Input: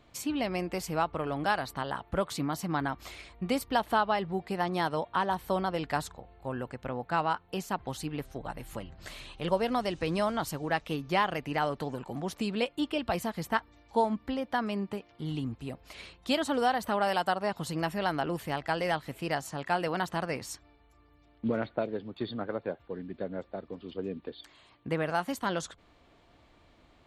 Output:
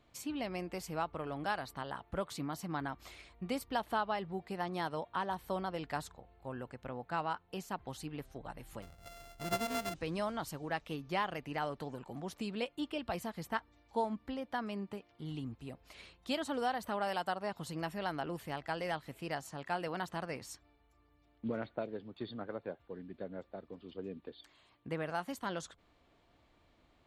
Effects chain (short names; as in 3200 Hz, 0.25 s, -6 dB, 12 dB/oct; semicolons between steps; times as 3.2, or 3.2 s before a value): 8.82–9.94 sample sorter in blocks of 64 samples; gain -7.5 dB